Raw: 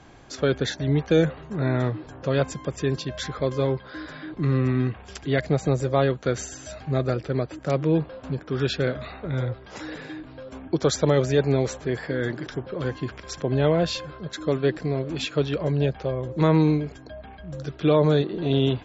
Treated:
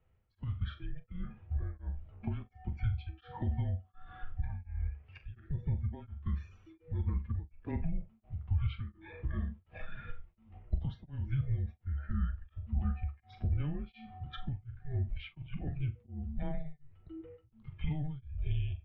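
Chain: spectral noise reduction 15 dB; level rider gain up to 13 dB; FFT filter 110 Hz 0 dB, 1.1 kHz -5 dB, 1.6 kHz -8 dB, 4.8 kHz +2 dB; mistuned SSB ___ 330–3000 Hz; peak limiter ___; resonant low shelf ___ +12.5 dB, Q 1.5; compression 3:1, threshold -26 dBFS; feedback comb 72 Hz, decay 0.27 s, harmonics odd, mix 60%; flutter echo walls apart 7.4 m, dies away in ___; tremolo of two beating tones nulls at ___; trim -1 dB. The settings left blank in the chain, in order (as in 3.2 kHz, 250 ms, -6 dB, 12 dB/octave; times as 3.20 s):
-300 Hz, -15 dBFS, 170 Hz, 0.24 s, 1.4 Hz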